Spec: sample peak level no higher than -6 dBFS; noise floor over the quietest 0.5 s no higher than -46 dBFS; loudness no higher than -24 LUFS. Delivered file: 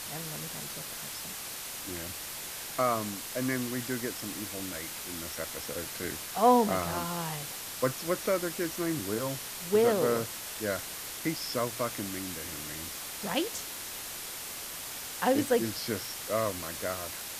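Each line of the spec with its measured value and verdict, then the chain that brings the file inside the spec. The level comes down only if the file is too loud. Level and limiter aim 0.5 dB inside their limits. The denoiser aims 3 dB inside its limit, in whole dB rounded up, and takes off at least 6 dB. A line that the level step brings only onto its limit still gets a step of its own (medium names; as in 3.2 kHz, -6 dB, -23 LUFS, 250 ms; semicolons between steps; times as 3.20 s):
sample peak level -11.0 dBFS: pass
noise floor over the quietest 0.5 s -40 dBFS: fail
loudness -32.0 LUFS: pass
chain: noise reduction 9 dB, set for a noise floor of -40 dBFS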